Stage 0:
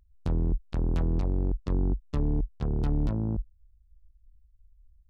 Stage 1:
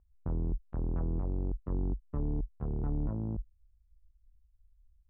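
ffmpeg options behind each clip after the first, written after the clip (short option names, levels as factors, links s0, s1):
-af "lowpass=f=1400:w=0.5412,lowpass=f=1400:w=1.3066,volume=0.501"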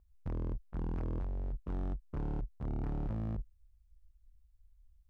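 -af "asoftclip=type=hard:threshold=0.0188,volume=1.12"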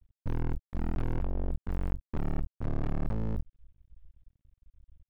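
-af "aresample=8000,aresample=44100,aeval=exprs='max(val(0),0)':c=same,volume=2.82"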